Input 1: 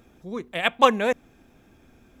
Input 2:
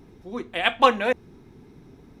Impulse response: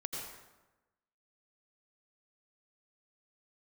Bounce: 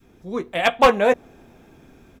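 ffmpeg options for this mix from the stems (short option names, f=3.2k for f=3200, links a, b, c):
-filter_complex "[0:a]dynaudnorm=f=180:g=3:m=5dB,volume=-1dB[a];[1:a]adelay=11,volume=-6.5dB[b];[a][b]amix=inputs=2:normalize=0,adynamicequalizer=threshold=0.0224:dfrequency=640:dqfactor=0.81:tfrequency=640:tqfactor=0.81:attack=5:release=100:ratio=0.375:range=4:mode=boostabove:tftype=bell,asoftclip=type=hard:threshold=-7.5dB"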